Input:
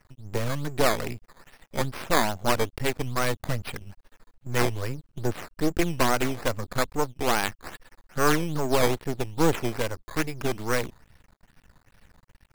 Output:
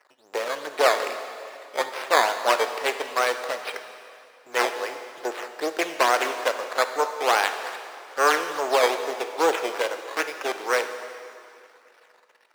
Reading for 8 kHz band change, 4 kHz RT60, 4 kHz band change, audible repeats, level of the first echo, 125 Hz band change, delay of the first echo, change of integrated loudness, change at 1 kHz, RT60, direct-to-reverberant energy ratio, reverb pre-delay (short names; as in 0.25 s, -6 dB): +0.5 dB, 2.3 s, +4.0 dB, none, none, under -30 dB, none, +2.5 dB, +5.5 dB, 2.5 s, 7.5 dB, 6 ms